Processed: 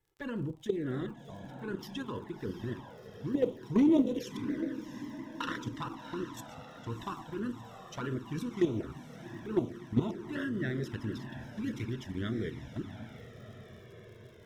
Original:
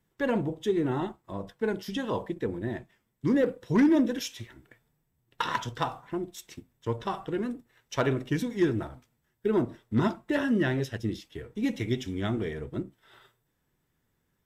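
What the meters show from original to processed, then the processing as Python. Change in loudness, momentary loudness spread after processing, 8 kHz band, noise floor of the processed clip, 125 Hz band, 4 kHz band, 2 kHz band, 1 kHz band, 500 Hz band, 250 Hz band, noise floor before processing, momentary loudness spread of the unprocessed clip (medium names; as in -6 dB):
-5.5 dB, 15 LU, -8.0 dB, -52 dBFS, -4.5 dB, -7.0 dB, -7.5 dB, -8.5 dB, -6.5 dB, -4.5 dB, -76 dBFS, 14 LU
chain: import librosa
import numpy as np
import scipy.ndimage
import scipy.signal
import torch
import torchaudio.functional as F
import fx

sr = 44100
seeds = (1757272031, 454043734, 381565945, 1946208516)

y = fx.level_steps(x, sr, step_db=11)
y = fx.echo_diffused(y, sr, ms=694, feedback_pct=66, wet_db=-9.0)
y = fx.env_flanger(y, sr, rest_ms=2.4, full_db=-25.5)
y = fx.dmg_crackle(y, sr, seeds[0], per_s=62.0, level_db=-52.0)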